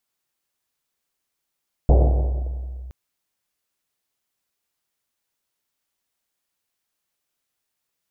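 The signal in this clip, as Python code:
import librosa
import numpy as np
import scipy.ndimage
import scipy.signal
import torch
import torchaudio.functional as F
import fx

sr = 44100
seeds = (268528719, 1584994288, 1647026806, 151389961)

y = fx.risset_drum(sr, seeds[0], length_s=1.02, hz=63.0, decay_s=2.77, noise_hz=480.0, noise_width_hz=520.0, noise_pct=20)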